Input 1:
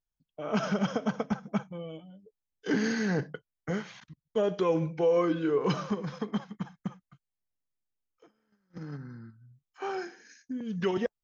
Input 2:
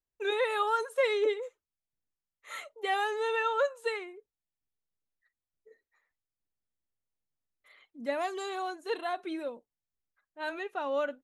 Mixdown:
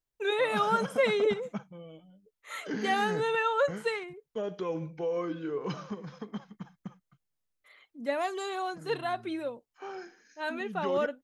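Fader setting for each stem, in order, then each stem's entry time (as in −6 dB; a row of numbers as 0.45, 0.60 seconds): −7.0, +1.5 decibels; 0.00, 0.00 seconds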